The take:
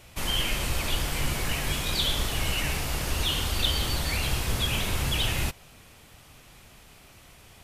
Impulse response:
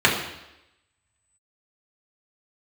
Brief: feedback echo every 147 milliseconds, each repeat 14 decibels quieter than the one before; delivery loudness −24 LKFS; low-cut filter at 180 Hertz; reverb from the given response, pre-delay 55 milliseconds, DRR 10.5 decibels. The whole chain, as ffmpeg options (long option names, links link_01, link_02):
-filter_complex "[0:a]highpass=180,aecho=1:1:147|294:0.2|0.0399,asplit=2[link_01][link_02];[1:a]atrim=start_sample=2205,adelay=55[link_03];[link_02][link_03]afir=irnorm=-1:irlink=0,volume=-31.5dB[link_04];[link_01][link_04]amix=inputs=2:normalize=0,volume=4dB"